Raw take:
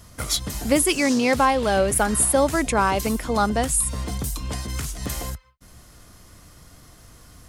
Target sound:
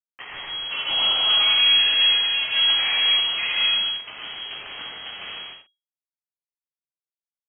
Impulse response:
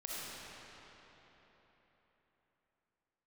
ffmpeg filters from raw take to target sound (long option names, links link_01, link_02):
-filter_complex "[0:a]highpass=frequency=96:width=0.5412,highpass=frequency=96:width=1.3066,lowshelf=frequency=430:gain=-7.5,aecho=1:1:7.3:0.36,bandreject=frequency=122.1:width_type=h:width=4,bandreject=frequency=244.2:width_type=h:width=4,bandreject=frequency=366.3:width_type=h:width=4,bandreject=frequency=488.4:width_type=h:width=4,bandreject=frequency=610.5:width_type=h:width=4,bandreject=frequency=732.6:width_type=h:width=4,bandreject=frequency=854.7:width_type=h:width=4,bandreject=frequency=976.8:width_type=h:width=4,bandreject=frequency=1098.9:width_type=h:width=4,bandreject=frequency=1221:width_type=h:width=4,bandreject=frequency=1343.1:width_type=h:width=4,bandreject=frequency=1465.2:width_type=h:width=4,bandreject=frequency=1587.3:width_type=h:width=4,bandreject=frequency=1709.4:width_type=h:width=4,bandreject=frequency=1831.5:width_type=h:width=4,bandreject=frequency=1953.6:width_type=h:width=4,asplit=2[link_01][link_02];[link_02]acompressor=threshold=-30dB:ratio=10,volume=0dB[link_03];[link_01][link_03]amix=inputs=2:normalize=0,flanger=delay=19:depth=5.5:speed=2.7,aresample=11025,acrusher=bits=4:mix=0:aa=0.000001,aresample=44100,aeval=exprs='(tanh(10*val(0)+0.7)-tanh(0.7))/10':channel_layout=same[link_04];[1:a]atrim=start_sample=2205,afade=type=out:start_time=0.36:duration=0.01,atrim=end_sample=16317[link_05];[link_04][link_05]afir=irnorm=-1:irlink=0,lowpass=frequency=2800:width_type=q:width=0.5098,lowpass=frequency=2800:width_type=q:width=0.6013,lowpass=frequency=2800:width_type=q:width=0.9,lowpass=frequency=2800:width_type=q:width=2.563,afreqshift=-3300,volume=2.5dB"